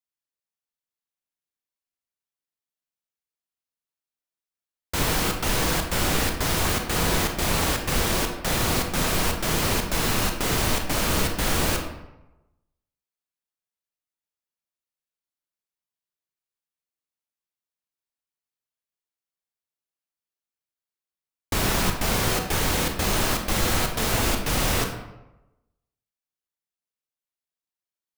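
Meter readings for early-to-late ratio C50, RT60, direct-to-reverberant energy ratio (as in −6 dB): 6.0 dB, 0.95 s, 3.5 dB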